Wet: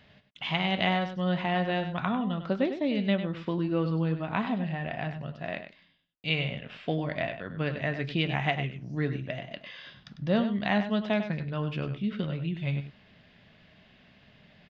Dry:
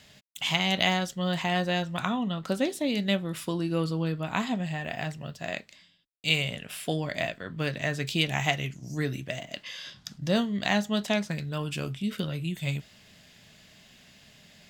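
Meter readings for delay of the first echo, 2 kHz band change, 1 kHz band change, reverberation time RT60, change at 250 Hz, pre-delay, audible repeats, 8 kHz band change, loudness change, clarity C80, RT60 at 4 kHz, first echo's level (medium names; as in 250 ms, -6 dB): 99 ms, -2.5 dB, 0.0 dB, no reverb, +0.5 dB, no reverb, 1, under -25 dB, -1.0 dB, no reverb, no reverb, -10.0 dB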